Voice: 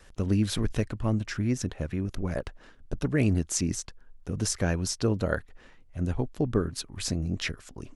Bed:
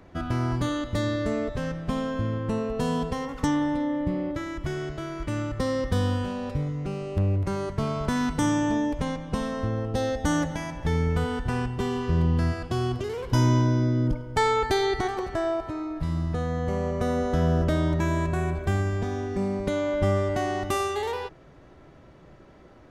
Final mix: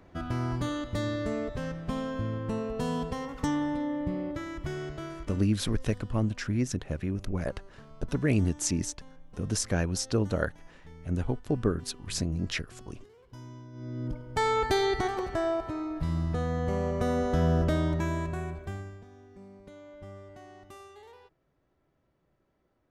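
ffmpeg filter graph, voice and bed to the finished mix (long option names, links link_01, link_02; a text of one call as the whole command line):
ffmpeg -i stem1.wav -i stem2.wav -filter_complex "[0:a]adelay=5100,volume=-1dB[link_01];[1:a]volume=18.5dB,afade=type=out:start_time=5.06:duration=0.4:silence=0.0944061,afade=type=in:start_time=13.72:duration=0.95:silence=0.0707946,afade=type=out:start_time=17.62:duration=1.42:silence=0.0944061[link_02];[link_01][link_02]amix=inputs=2:normalize=0" out.wav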